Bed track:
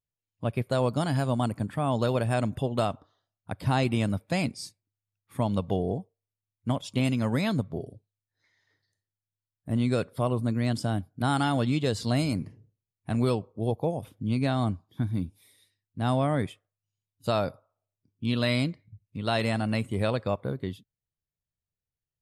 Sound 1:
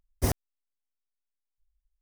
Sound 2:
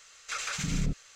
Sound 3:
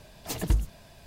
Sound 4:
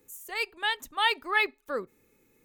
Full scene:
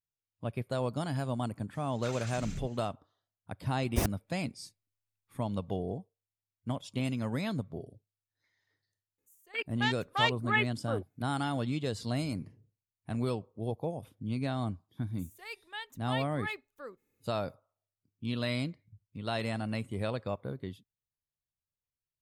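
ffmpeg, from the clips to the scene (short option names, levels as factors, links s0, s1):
-filter_complex "[4:a]asplit=2[s0][s1];[0:a]volume=0.447[s2];[s0]afwtdn=0.0251[s3];[2:a]atrim=end=1.15,asetpts=PTS-STARTPTS,volume=0.282,afade=t=in:d=0.004:c=hsin,afade=t=out:st=1.146:d=0.004:c=hsin,adelay=1740[s4];[1:a]atrim=end=2.01,asetpts=PTS-STARTPTS,volume=0.708,afade=t=in:d=0.004:c=hsin,afade=t=out:st=2.006:d=0.004:c=hsin,adelay=3740[s5];[s3]atrim=end=2.44,asetpts=PTS-STARTPTS,volume=0.708,afade=t=in:d=0.004:c=hsin,afade=t=out:st=2.436:d=0.004:c=hsin,adelay=9180[s6];[s1]atrim=end=2.44,asetpts=PTS-STARTPTS,volume=0.224,afade=t=in:d=0.004:c=hsin,afade=t=out:st=2.436:d=0.004:c=hsin,adelay=15100[s7];[s2][s4][s5][s6][s7]amix=inputs=5:normalize=0"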